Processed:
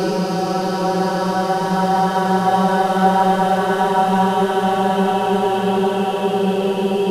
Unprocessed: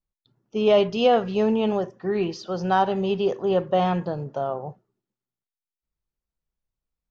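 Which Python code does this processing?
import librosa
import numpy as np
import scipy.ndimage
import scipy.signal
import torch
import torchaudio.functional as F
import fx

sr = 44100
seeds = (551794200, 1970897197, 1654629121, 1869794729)

p1 = fx.cvsd(x, sr, bps=64000)
p2 = fx.rider(p1, sr, range_db=10, speed_s=0.5)
p3 = p1 + (p2 * librosa.db_to_amplitude(0.0))
y = fx.paulstretch(p3, sr, seeds[0], factor=10.0, window_s=1.0, from_s=2.44)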